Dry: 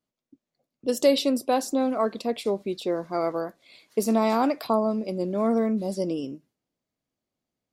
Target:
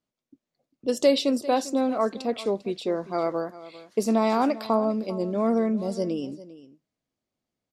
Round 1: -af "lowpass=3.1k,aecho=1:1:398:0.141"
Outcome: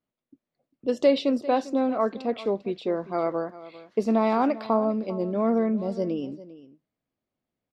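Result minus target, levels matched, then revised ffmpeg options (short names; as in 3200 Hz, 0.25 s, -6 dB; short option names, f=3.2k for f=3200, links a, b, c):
8000 Hz band -13.5 dB
-af "lowpass=8.7k,aecho=1:1:398:0.141"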